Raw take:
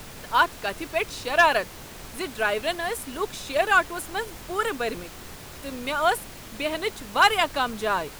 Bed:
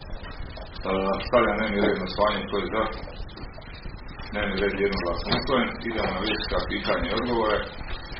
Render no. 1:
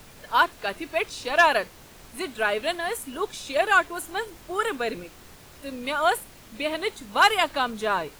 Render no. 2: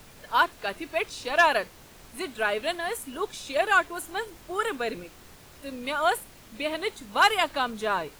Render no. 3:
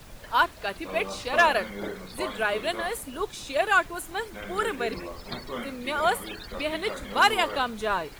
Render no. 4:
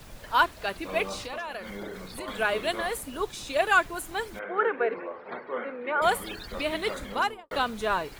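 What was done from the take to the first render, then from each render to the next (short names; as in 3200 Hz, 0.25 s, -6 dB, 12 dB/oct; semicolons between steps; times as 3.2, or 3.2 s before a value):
noise print and reduce 7 dB
gain -2 dB
add bed -12 dB
1.2–2.28 compressor, threshold -33 dBFS; 4.39–6.02 speaker cabinet 350–2200 Hz, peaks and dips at 480 Hz +7 dB, 860 Hz +3 dB, 1500 Hz +4 dB; 7–7.51 studio fade out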